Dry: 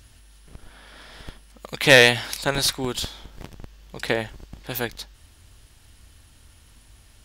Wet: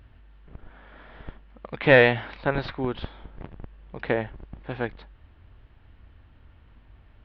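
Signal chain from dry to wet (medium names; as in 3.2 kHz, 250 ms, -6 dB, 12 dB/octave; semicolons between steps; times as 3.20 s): Gaussian low-pass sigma 3.6 samples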